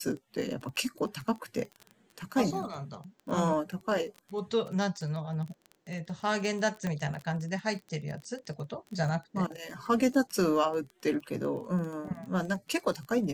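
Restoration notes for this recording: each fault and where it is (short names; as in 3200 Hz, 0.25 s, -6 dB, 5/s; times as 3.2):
crackle 22/s -36 dBFS
6.87 pop -20 dBFS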